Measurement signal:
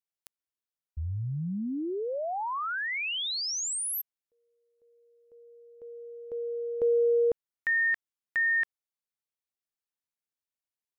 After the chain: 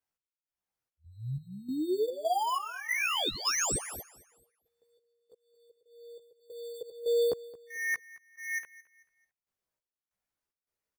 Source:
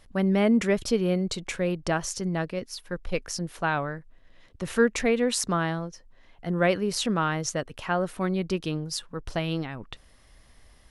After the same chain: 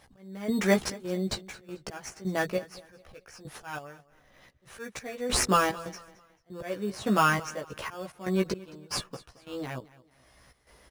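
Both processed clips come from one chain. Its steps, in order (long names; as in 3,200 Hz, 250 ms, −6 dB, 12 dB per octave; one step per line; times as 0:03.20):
high-pass filter 280 Hz 6 dB per octave
volume swells 523 ms
in parallel at −3.5 dB: decimation without filtering 11×
on the sum: gate pattern "xx....xxxxx..xx" 187 BPM −12 dB
multi-voice chorus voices 6, 0.24 Hz, delay 15 ms, depth 1.4 ms
on a send: repeating echo 220 ms, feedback 34%, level −20 dB
on the sum: level +3.5 dB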